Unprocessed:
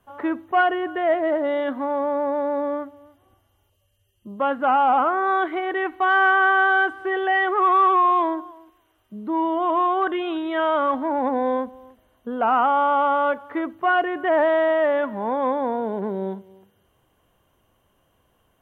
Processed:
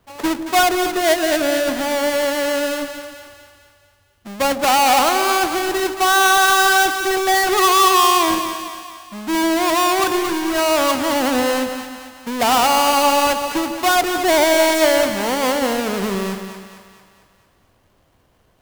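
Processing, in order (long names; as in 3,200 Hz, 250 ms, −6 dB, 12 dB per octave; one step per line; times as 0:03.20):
each half-wave held at its own peak
echo with a time of its own for lows and highs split 720 Hz, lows 147 ms, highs 225 ms, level −8.5 dB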